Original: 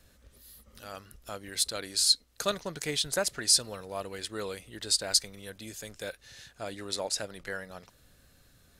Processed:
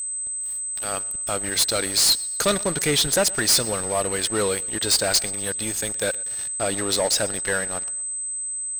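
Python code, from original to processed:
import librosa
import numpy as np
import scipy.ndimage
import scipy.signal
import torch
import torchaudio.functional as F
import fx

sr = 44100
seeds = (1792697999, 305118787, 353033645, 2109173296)

p1 = fx.leveller(x, sr, passes=5)
p2 = p1 + 10.0 ** (-22.0 / 20.0) * np.sin(2.0 * np.pi * 8200.0 * np.arange(len(p1)) / sr)
p3 = p2 + fx.echo_feedback(p2, sr, ms=121, feedback_pct=45, wet_db=-22.5, dry=0)
y = F.gain(torch.from_numpy(p3), -4.5).numpy()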